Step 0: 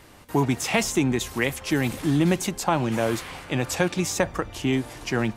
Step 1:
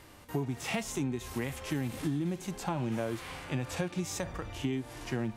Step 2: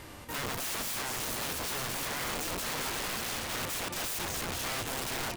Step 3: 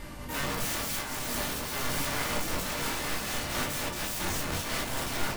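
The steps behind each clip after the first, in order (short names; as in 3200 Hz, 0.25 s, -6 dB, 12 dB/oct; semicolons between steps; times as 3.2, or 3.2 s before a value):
harmonic-percussive split percussive -14 dB; compressor 10:1, threshold -29 dBFS, peak gain reduction 12 dB
limiter -26 dBFS, peak gain reduction 7.5 dB; on a send: feedback echo 0.232 s, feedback 39%, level -9 dB; on the sum: wrapped overs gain 37 dB; gain +7 dB
hum 50 Hz, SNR 11 dB; shoebox room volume 300 m³, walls furnished, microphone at 2.5 m; noise-modulated level, depth 55%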